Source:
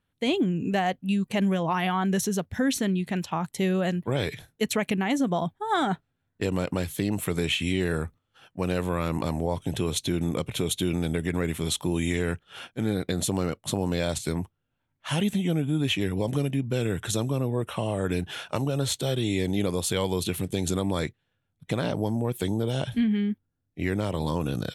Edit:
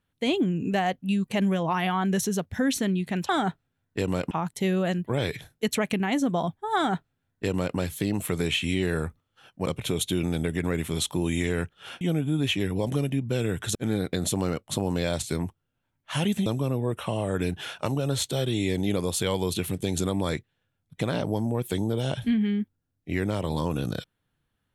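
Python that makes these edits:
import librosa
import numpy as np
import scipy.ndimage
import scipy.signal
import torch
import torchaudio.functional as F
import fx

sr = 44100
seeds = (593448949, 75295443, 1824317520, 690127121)

y = fx.edit(x, sr, fx.duplicate(start_s=5.73, length_s=1.02, to_s=3.29),
    fx.cut(start_s=8.64, length_s=1.72),
    fx.move(start_s=15.42, length_s=1.74, to_s=12.71), tone=tone)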